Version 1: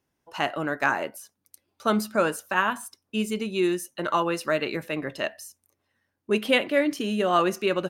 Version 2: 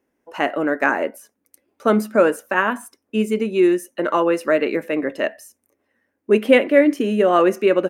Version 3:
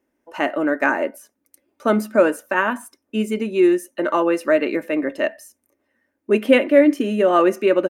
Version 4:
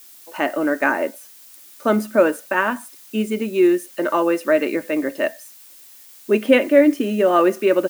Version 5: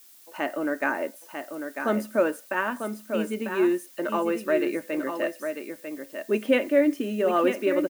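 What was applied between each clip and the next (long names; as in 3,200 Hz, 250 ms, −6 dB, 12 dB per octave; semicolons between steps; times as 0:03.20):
graphic EQ with 10 bands 125 Hz −10 dB, 250 Hz +10 dB, 500 Hz +9 dB, 2,000 Hz +7 dB, 4,000 Hz −7 dB
comb filter 3.3 ms, depth 33%; level −1 dB
background noise blue −45 dBFS
single-tap delay 946 ms −7 dB; level −7.5 dB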